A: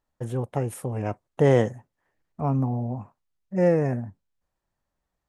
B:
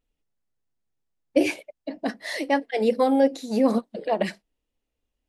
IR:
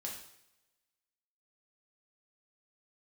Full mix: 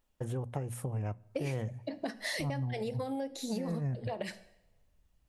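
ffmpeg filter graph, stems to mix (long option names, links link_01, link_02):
-filter_complex "[0:a]bandreject=frequency=60:width_type=h:width=6,bandreject=frequency=120:width_type=h:width=6,bandreject=frequency=180:width_type=h:width=6,bandreject=frequency=240:width_type=h:width=6,asubboost=boost=8:cutoff=150,volume=-2dB,asplit=2[link_01][link_02];[link_02]volume=-23dB[link_03];[1:a]highshelf=frequency=3800:gain=6.5,acompressor=threshold=-24dB:ratio=6,volume=-2dB,asplit=3[link_04][link_05][link_06];[link_05]volume=-12.5dB[link_07];[link_06]apad=whole_len=233145[link_08];[link_01][link_08]sidechaincompress=threshold=-36dB:ratio=8:attack=16:release=140[link_09];[2:a]atrim=start_sample=2205[link_10];[link_03][link_07]amix=inputs=2:normalize=0[link_11];[link_11][link_10]afir=irnorm=-1:irlink=0[link_12];[link_09][link_04][link_12]amix=inputs=3:normalize=0,acompressor=threshold=-33dB:ratio=5"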